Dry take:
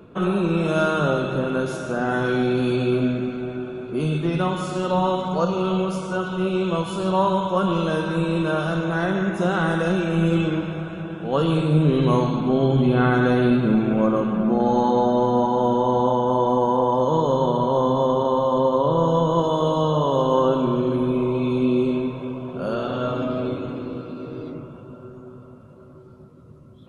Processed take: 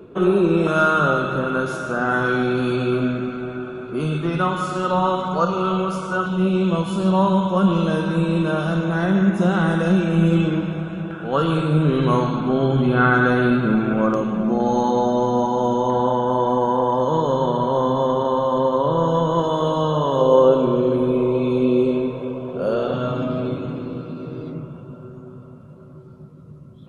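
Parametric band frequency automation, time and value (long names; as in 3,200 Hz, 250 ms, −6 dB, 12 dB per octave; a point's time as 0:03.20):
parametric band +9 dB 0.57 octaves
390 Hz
from 0:00.67 1,300 Hz
from 0:06.26 210 Hz
from 0:11.11 1,400 Hz
from 0:14.14 6,100 Hz
from 0:15.90 1,700 Hz
from 0:20.21 480 Hz
from 0:22.94 160 Hz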